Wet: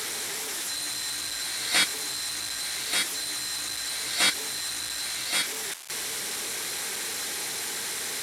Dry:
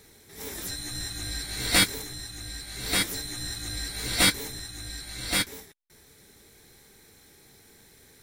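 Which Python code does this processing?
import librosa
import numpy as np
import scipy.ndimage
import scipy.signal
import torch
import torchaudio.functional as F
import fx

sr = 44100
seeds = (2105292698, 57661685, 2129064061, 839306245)

y = fx.delta_mod(x, sr, bps=64000, step_db=-24.0)
y = fx.highpass(y, sr, hz=900.0, slope=6)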